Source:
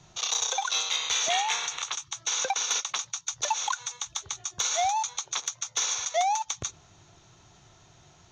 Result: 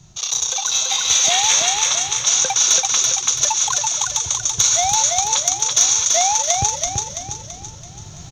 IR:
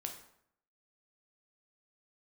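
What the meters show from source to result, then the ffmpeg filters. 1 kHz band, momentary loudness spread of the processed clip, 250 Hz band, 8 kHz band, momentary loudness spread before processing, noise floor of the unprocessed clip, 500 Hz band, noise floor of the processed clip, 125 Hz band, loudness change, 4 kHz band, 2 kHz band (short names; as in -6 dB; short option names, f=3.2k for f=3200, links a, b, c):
+6.5 dB, 9 LU, n/a, +15.0 dB, 8 LU, -58 dBFS, +7.5 dB, -38 dBFS, +18.5 dB, +12.5 dB, +10.5 dB, +7.0 dB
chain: -filter_complex "[0:a]bass=f=250:g=13,treble=f=4k:g=10,asplit=2[a][b];[b]aecho=0:1:333|666|999|1332|1665|1998:0.708|0.319|0.143|0.0645|0.029|0.0131[c];[a][c]amix=inputs=2:normalize=0,dynaudnorm=f=660:g=3:m=14dB,highshelf=f=11k:g=4,asplit=2[d][e];[e]asplit=5[f][g][h][i][j];[f]adelay=235,afreqshift=-140,volume=-16.5dB[k];[g]adelay=470,afreqshift=-280,volume=-22.2dB[l];[h]adelay=705,afreqshift=-420,volume=-27.9dB[m];[i]adelay=940,afreqshift=-560,volume=-33.5dB[n];[j]adelay=1175,afreqshift=-700,volume=-39.2dB[o];[k][l][m][n][o]amix=inputs=5:normalize=0[p];[d][p]amix=inputs=2:normalize=0,volume=-1.5dB"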